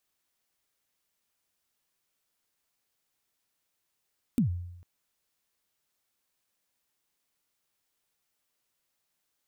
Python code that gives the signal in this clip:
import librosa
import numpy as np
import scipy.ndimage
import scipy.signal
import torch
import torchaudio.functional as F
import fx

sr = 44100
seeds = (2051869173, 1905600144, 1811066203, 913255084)

y = fx.drum_kick(sr, seeds[0], length_s=0.45, level_db=-19.0, start_hz=270.0, end_hz=88.0, sweep_ms=110.0, decay_s=0.87, click=True)